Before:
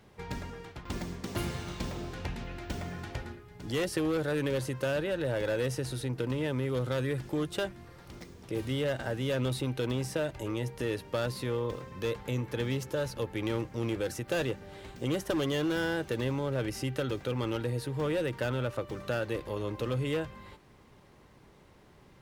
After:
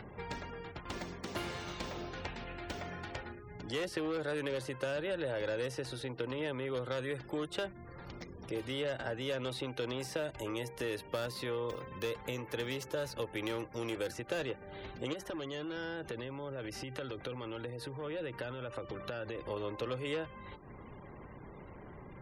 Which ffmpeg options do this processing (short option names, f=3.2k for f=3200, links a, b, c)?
-filter_complex "[0:a]asettb=1/sr,asplit=3[a][b][c];[a]atrim=end=10.004[d];[b]atrim=start=10:end=14.11,asetpts=PTS-STARTPTS,afade=t=in:d=0.004:c=qsin,afade=t=out:st=4.106:d=0.004:c=qsin,highshelf=f=7.6k:g=11.5[e];[c]atrim=start=14.106[f];[d][e]acrossfade=d=0.004:c1=hsin:c2=qsin[g];[g][f]acrossfade=d=0.004:c1=qsin:c2=hsin,asettb=1/sr,asplit=3[h][i][j];[h]atrim=end=15.134[k];[i]atrim=start=15.13:end=19.42,asetpts=PTS-STARTPTS,afade=t=in:d=0.004:c=qsin,afade=t=out:st=4.286:d=0.004:c=qsin,acompressor=threshold=-33dB:ratio=16:attack=3.2:release=140:knee=1:detection=peak[l];[j]atrim=start=19.416[m];[k][l]acrossfade=d=0.004:c1=hsin:c2=qsin[n];[n][m]acrossfade=d=0.004:c1=qsin:c2=hsin,acompressor=mode=upward:threshold=-40dB:ratio=2.5,afftfilt=real='re*gte(hypot(re,im),0.00251)':imag='im*gte(hypot(re,im),0.00251)':win_size=1024:overlap=0.75,acrossover=split=350|5300[o][p][q];[o]acompressor=threshold=-46dB:ratio=4[r];[p]acompressor=threshold=-34dB:ratio=4[s];[q]acompressor=threshold=-56dB:ratio=4[t];[r][s][t]amix=inputs=3:normalize=0"